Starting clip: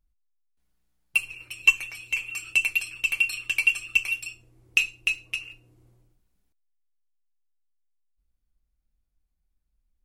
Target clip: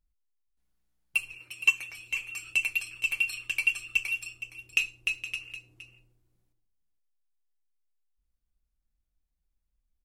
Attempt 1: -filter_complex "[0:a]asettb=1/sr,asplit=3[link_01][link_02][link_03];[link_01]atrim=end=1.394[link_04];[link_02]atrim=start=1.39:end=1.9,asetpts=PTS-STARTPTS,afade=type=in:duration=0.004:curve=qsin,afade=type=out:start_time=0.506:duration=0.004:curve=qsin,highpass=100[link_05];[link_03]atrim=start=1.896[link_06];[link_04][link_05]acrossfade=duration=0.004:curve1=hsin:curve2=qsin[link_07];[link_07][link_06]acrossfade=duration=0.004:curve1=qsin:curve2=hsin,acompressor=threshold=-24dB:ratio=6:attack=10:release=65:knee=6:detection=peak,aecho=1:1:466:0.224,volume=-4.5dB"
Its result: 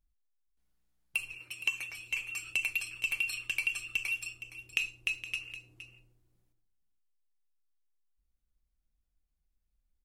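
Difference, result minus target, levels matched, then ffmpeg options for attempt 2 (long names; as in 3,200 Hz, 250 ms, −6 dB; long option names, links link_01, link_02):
downward compressor: peak gain reduction +12.5 dB
-filter_complex "[0:a]asettb=1/sr,asplit=3[link_01][link_02][link_03];[link_01]atrim=end=1.394[link_04];[link_02]atrim=start=1.39:end=1.9,asetpts=PTS-STARTPTS,afade=type=in:duration=0.004:curve=qsin,afade=type=out:start_time=0.506:duration=0.004:curve=qsin,highpass=100[link_05];[link_03]atrim=start=1.896[link_06];[link_04][link_05]acrossfade=duration=0.004:curve1=hsin:curve2=qsin[link_07];[link_07][link_06]acrossfade=duration=0.004:curve1=qsin:curve2=hsin,aecho=1:1:466:0.224,volume=-4.5dB"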